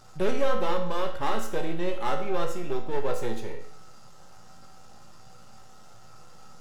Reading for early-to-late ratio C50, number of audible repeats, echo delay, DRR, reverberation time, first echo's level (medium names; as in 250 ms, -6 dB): 7.5 dB, no echo, no echo, 1.5 dB, 0.65 s, no echo